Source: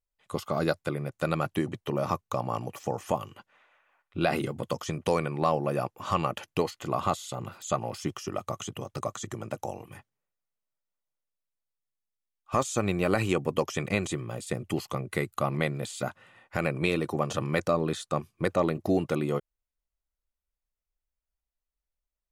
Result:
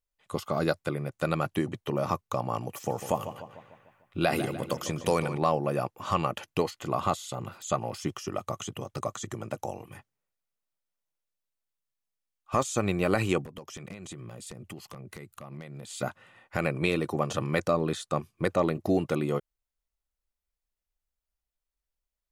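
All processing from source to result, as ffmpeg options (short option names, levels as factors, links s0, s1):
-filter_complex "[0:a]asettb=1/sr,asplit=3[s0][s1][s2];[s0]atrim=end=2.694[s3];[s1]atrim=start=2.69:end=5.38,asetpts=PTS-STARTPTS,afade=t=in:d=0.004:c=qsin,afade=t=out:st=2.686:d=0.004:c=qsin,highshelf=f=7800:g=9,asplit=2[s4][s5];[s5]adelay=149,lowpass=f=4300:p=1,volume=0.282,asplit=2[s6][s7];[s7]adelay=149,lowpass=f=4300:p=1,volume=0.54,asplit=2[s8][s9];[s9]adelay=149,lowpass=f=4300:p=1,volume=0.54,asplit=2[s10][s11];[s11]adelay=149,lowpass=f=4300:p=1,volume=0.54,asplit=2[s12][s13];[s13]adelay=149,lowpass=f=4300:p=1,volume=0.54,asplit=2[s14][s15];[s15]adelay=149,lowpass=f=4300:p=1,volume=0.54[s16];[s4][s6][s8][s10][s12][s14][s16]amix=inputs=7:normalize=0,atrim=end_sample=118629[s17];[s2]atrim=start=5.376[s18];[s3][s17]acrossfade=d=0.004:c1=hsin:c2=qsin[s19];[s19][s18]acrossfade=d=0.004:c1=qsin:c2=hsin,asettb=1/sr,asplit=3[s20][s21][s22];[s20]atrim=end=13.414[s23];[s21]atrim=start=13.41:end=15.91,asetpts=PTS-STARTPTS,afade=t=in:d=0.004:c=qsin,afade=t=out:st=2.496:d=0.004:c=qsin,acompressor=threshold=0.0126:ratio=20:attack=3.2:release=140:knee=1:detection=peak,aeval=exprs='0.0237*(abs(mod(val(0)/0.0237+3,4)-2)-1)':c=same,equalizer=f=180:w=1.8:g=4[s24];[s22]atrim=start=15.906[s25];[s23][s24]acrossfade=d=0.004:c1=hsin:c2=qsin[s26];[s26][s25]acrossfade=d=0.004:c1=qsin:c2=hsin"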